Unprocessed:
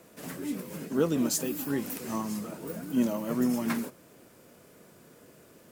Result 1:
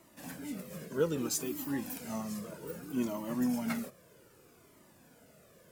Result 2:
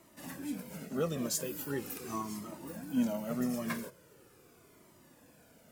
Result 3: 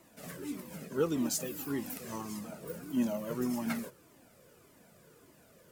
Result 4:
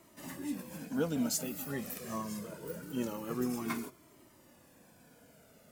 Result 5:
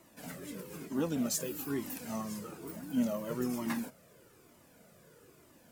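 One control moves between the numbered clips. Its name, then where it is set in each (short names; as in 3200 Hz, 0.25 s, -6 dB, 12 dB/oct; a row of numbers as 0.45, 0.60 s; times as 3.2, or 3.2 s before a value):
cascading flanger, rate: 0.63, 0.41, 1.7, 0.24, 1.1 Hz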